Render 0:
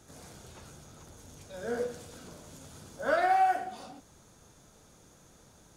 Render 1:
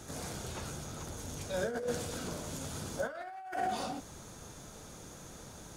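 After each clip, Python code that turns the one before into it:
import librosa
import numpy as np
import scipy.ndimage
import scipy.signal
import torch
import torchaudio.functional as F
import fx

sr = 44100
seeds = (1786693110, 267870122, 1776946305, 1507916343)

y = fx.over_compress(x, sr, threshold_db=-39.0, ratio=-1.0)
y = F.gain(torch.from_numpy(y), 2.0).numpy()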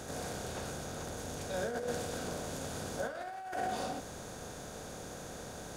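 y = fx.bin_compress(x, sr, power=0.6)
y = F.gain(torch.from_numpy(y), -4.0).numpy()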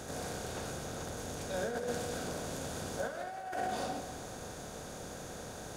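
y = fx.echo_feedback(x, sr, ms=202, feedback_pct=51, wet_db=-12.5)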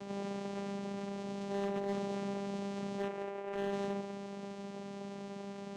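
y = fx.vocoder(x, sr, bands=4, carrier='saw', carrier_hz=199.0)
y = np.clip(10.0 ** (34.0 / 20.0) * y, -1.0, 1.0) / 10.0 ** (34.0 / 20.0)
y = F.gain(torch.from_numpy(y), 2.0).numpy()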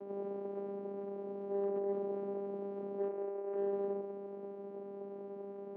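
y = fx.ladder_bandpass(x, sr, hz=420.0, resonance_pct=40)
y = F.gain(torch.from_numpy(y), 10.5).numpy()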